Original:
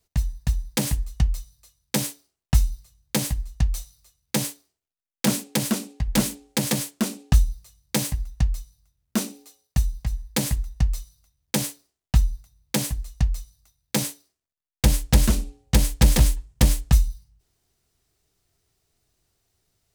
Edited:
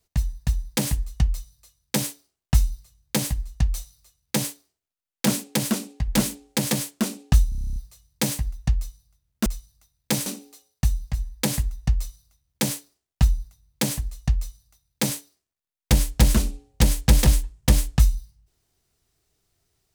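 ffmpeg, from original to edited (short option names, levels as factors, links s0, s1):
-filter_complex "[0:a]asplit=12[s0][s1][s2][s3][s4][s5][s6][s7][s8][s9][s10][s11];[s0]atrim=end=7.522[s12];[s1]atrim=start=7.488:end=7.522[s13];[s2]atrim=start=7.488:end=7.522[s14];[s3]atrim=start=7.488:end=7.522[s15];[s4]atrim=start=7.488:end=7.522[s16];[s5]atrim=start=7.488:end=7.522[s17];[s6]atrim=start=7.488:end=7.522[s18];[s7]atrim=start=7.488:end=7.522[s19];[s8]atrim=start=7.488:end=7.522[s20];[s9]atrim=start=7.488:end=9.192[s21];[s10]atrim=start=13.298:end=14.102[s22];[s11]atrim=start=9.188[s23];[s12][s13]acrossfade=d=0.004:c1=hsin:c2=hsin[s24];[s24][s14]acrossfade=d=0.004:c1=hsin:c2=hsin[s25];[s25][s15]acrossfade=d=0.004:c1=hsin:c2=hsin[s26];[s26][s16]acrossfade=d=0.004:c1=hsin:c2=hsin[s27];[s27][s17]acrossfade=d=0.004:c1=hsin:c2=hsin[s28];[s28][s18]acrossfade=d=0.004:c1=hsin:c2=hsin[s29];[s29][s19]acrossfade=d=0.004:c1=hsin:c2=hsin[s30];[s30][s20]acrossfade=d=0.004:c1=hsin:c2=hsin[s31];[s31][s21]acrossfade=d=0.004:c1=hsin:c2=hsin[s32];[s32][s22]acrossfade=d=0.004:c1=hsin:c2=hsin[s33];[s33][s23]acrossfade=d=0.004:c1=hsin:c2=hsin"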